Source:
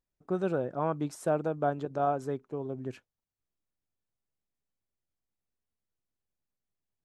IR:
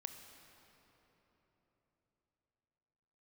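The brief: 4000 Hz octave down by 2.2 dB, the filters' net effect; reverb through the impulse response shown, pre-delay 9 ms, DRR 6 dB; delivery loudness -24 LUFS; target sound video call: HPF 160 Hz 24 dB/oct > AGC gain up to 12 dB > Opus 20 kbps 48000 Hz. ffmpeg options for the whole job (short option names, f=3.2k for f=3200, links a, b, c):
-filter_complex "[0:a]equalizer=f=4k:t=o:g=-3,asplit=2[a][b];[1:a]atrim=start_sample=2205,adelay=9[c];[b][c]afir=irnorm=-1:irlink=0,volume=-2.5dB[d];[a][d]amix=inputs=2:normalize=0,highpass=f=160:w=0.5412,highpass=f=160:w=1.3066,dynaudnorm=m=12dB,volume=8.5dB" -ar 48000 -c:a libopus -b:a 20k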